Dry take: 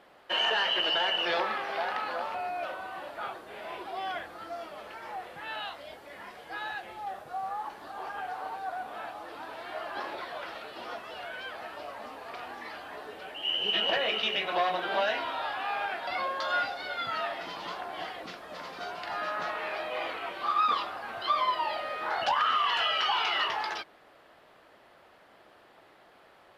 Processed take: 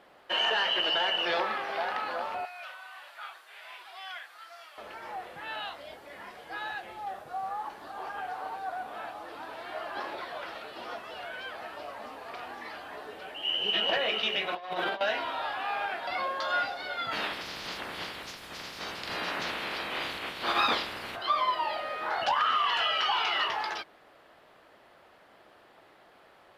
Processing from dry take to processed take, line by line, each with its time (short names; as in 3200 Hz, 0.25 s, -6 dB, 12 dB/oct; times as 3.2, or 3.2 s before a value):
2.45–4.78 HPF 1500 Hz
14.53–15.01 negative-ratio compressor -33 dBFS, ratio -0.5
17.11–21.15 spectral limiter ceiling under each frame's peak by 22 dB